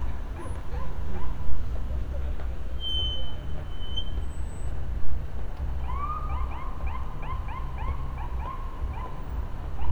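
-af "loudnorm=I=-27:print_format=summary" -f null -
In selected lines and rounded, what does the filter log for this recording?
Input Integrated:    -34.7 LUFS
Input True Peak:      -7.3 dBTP
Input LRA:             2.2 LU
Input Threshold:     -44.7 LUFS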